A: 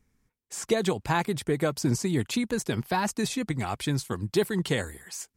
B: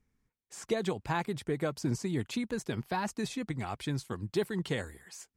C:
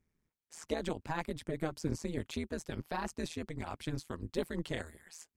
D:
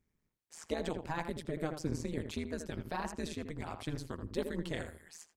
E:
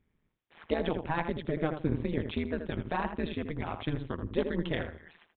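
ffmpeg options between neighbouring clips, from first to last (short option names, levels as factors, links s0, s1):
-af "highshelf=f=6600:g=-7.5,volume=0.501"
-af "tremolo=f=160:d=1"
-filter_complex "[0:a]asplit=2[s0][s1];[s1]adelay=81,lowpass=f=1800:p=1,volume=0.447,asplit=2[s2][s3];[s3]adelay=81,lowpass=f=1800:p=1,volume=0.2,asplit=2[s4][s5];[s5]adelay=81,lowpass=f=1800:p=1,volume=0.2[s6];[s0][s2][s4][s6]amix=inputs=4:normalize=0,volume=0.891"
-af "aresample=8000,aresample=44100,volume=2"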